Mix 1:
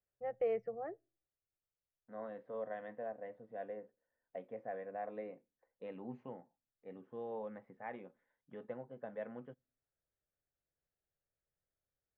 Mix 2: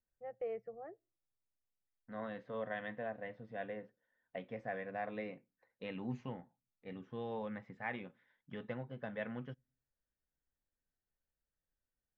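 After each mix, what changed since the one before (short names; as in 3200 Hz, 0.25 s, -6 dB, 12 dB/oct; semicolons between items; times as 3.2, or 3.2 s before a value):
first voice -6.0 dB; second voice: remove band-pass 530 Hz, Q 0.94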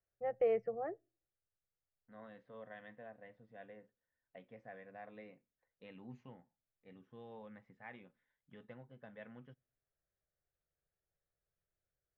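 first voice +8.5 dB; second voice -11.0 dB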